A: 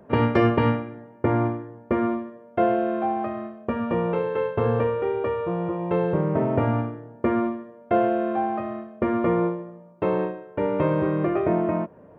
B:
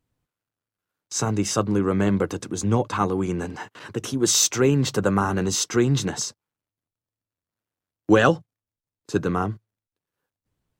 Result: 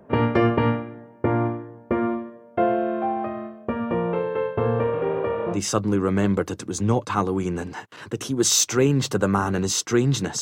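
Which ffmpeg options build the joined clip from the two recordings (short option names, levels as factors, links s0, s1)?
-filter_complex "[0:a]asplit=3[s0][s1][s2];[s0]afade=t=out:st=4.81:d=0.02[s3];[s1]asplit=9[s4][s5][s6][s7][s8][s9][s10][s11][s12];[s5]adelay=356,afreqshift=49,volume=0.282[s13];[s6]adelay=712,afreqshift=98,volume=0.18[s14];[s7]adelay=1068,afreqshift=147,volume=0.115[s15];[s8]adelay=1424,afreqshift=196,volume=0.0741[s16];[s9]adelay=1780,afreqshift=245,volume=0.0473[s17];[s10]adelay=2136,afreqshift=294,volume=0.0302[s18];[s11]adelay=2492,afreqshift=343,volume=0.0193[s19];[s12]adelay=2848,afreqshift=392,volume=0.0124[s20];[s4][s13][s14][s15][s16][s17][s18][s19][s20]amix=inputs=9:normalize=0,afade=t=in:st=4.81:d=0.02,afade=t=out:st=5.6:d=0.02[s21];[s2]afade=t=in:st=5.6:d=0.02[s22];[s3][s21][s22]amix=inputs=3:normalize=0,apad=whole_dur=10.41,atrim=end=10.41,atrim=end=5.6,asetpts=PTS-STARTPTS[s23];[1:a]atrim=start=1.33:end=6.24,asetpts=PTS-STARTPTS[s24];[s23][s24]acrossfade=d=0.1:c1=tri:c2=tri"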